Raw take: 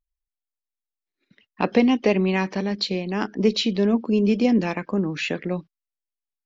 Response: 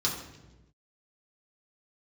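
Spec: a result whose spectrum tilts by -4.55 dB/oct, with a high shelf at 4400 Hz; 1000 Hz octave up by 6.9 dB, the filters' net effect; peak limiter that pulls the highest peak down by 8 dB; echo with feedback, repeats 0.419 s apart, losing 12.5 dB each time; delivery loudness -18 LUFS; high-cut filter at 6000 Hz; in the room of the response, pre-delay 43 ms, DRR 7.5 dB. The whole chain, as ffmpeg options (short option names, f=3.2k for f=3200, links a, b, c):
-filter_complex "[0:a]lowpass=6k,equalizer=f=1k:t=o:g=8.5,highshelf=f=4.4k:g=7.5,alimiter=limit=-10.5dB:level=0:latency=1,aecho=1:1:419|838|1257:0.237|0.0569|0.0137,asplit=2[a][b];[1:a]atrim=start_sample=2205,adelay=43[c];[b][c]afir=irnorm=-1:irlink=0,volume=-15dB[d];[a][d]amix=inputs=2:normalize=0,volume=2.5dB"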